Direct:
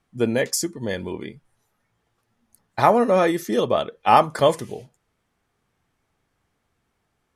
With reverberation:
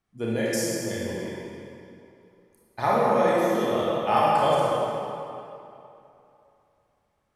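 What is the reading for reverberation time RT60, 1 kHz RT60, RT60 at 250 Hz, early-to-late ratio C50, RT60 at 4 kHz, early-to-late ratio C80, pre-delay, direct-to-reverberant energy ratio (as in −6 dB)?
2.8 s, 2.9 s, 2.7 s, −4.0 dB, 2.1 s, −2.0 dB, 26 ms, −6.5 dB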